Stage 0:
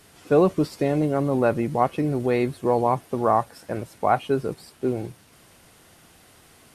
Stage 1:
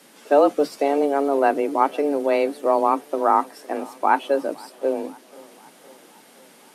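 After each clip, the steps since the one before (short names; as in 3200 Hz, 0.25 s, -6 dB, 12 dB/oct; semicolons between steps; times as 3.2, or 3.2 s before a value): frequency shift +140 Hz; tape echo 0.512 s, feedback 67%, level -23 dB; gain +2 dB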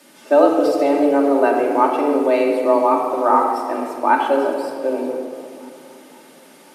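shoebox room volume 3800 m³, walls mixed, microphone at 2.6 m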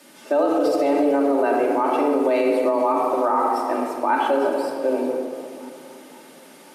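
limiter -11 dBFS, peak gain reduction 9 dB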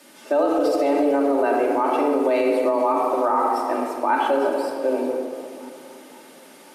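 resonant low shelf 100 Hz +7 dB, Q 3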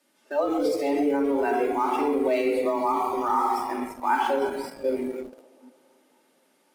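in parallel at -5.5 dB: sample gate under -25 dBFS; on the sum: spectral noise reduction 13 dB; gain -6 dB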